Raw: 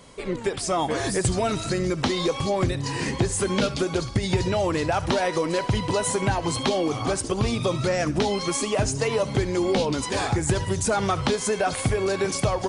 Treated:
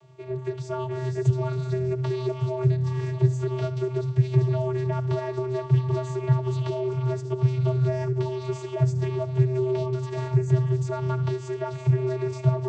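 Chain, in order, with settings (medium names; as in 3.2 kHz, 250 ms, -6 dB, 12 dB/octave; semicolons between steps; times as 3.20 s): vocoder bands 16, square 128 Hz; on a send: reverberation RT60 2.8 s, pre-delay 39 ms, DRR 23 dB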